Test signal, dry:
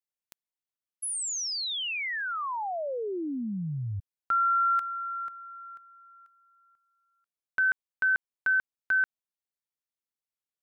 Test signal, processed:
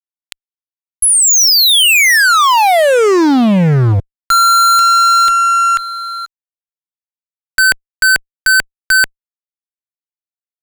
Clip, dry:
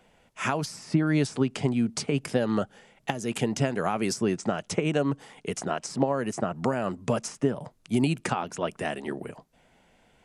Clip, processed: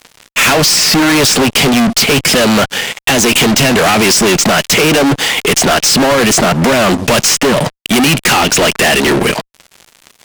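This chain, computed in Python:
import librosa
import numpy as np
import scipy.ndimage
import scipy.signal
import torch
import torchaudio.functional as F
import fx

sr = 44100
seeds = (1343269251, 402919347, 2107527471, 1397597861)

p1 = fx.weighting(x, sr, curve='D')
p2 = fx.level_steps(p1, sr, step_db=13)
p3 = p1 + F.gain(torch.from_numpy(p2), -1.5).numpy()
p4 = fx.fuzz(p3, sr, gain_db=40.0, gate_db=-48.0)
y = F.gain(torch.from_numpy(p4), 5.0).numpy()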